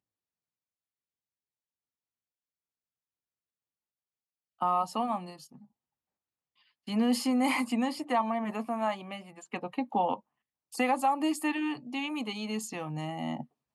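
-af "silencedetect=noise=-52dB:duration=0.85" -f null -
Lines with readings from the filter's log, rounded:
silence_start: 0.00
silence_end: 4.60 | silence_duration: 4.60
silence_start: 5.65
silence_end: 6.87 | silence_duration: 1.22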